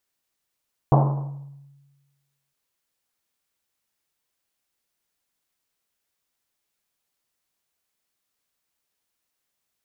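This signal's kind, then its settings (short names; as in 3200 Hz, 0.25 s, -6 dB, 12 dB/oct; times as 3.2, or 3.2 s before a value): Risset drum length 1.61 s, pitch 140 Hz, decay 1.35 s, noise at 720 Hz, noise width 650 Hz, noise 30%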